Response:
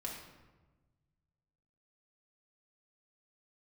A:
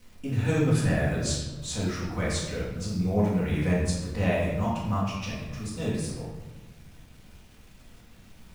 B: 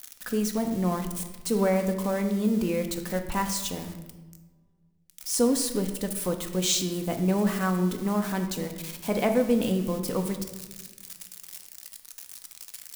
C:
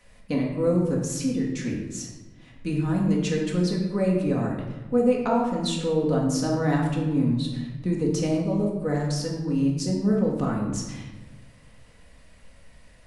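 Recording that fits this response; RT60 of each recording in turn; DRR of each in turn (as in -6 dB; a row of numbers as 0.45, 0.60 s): C; 1.2, 1.3, 1.2 s; -10.0, 5.0, -2.5 dB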